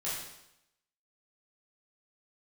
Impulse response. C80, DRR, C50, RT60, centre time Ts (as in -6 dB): 4.0 dB, -9.5 dB, 0.5 dB, 0.85 s, 64 ms